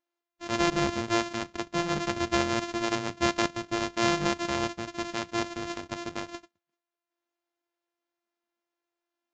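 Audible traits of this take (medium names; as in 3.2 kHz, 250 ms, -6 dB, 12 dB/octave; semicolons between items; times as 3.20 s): a buzz of ramps at a fixed pitch in blocks of 128 samples; Vorbis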